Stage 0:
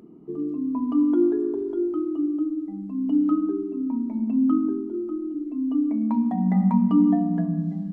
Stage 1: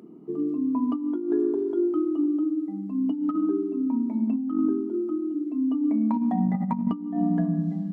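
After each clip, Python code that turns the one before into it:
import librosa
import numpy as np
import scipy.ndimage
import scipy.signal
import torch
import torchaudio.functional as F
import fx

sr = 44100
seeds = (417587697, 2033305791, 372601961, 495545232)

y = scipy.signal.sosfilt(scipy.signal.butter(2, 150.0, 'highpass', fs=sr, output='sos'), x)
y = fx.over_compress(y, sr, threshold_db=-23.0, ratio=-0.5)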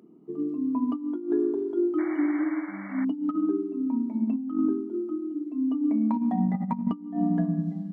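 y = fx.spec_paint(x, sr, seeds[0], shape='noise', start_s=1.98, length_s=1.07, low_hz=550.0, high_hz=2300.0, level_db=-39.0)
y = fx.upward_expand(y, sr, threshold_db=-35.0, expansion=1.5)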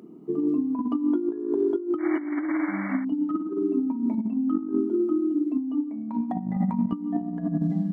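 y = fx.over_compress(x, sr, threshold_db=-29.0, ratio=-0.5)
y = y * 10.0 ** (4.5 / 20.0)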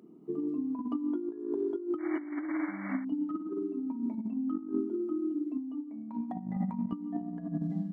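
y = fx.am_noise(x, sr, seeds[1], hz=5.7, depth_pct=55)
y = y * 10.0 ** (-5.0 / 20.0)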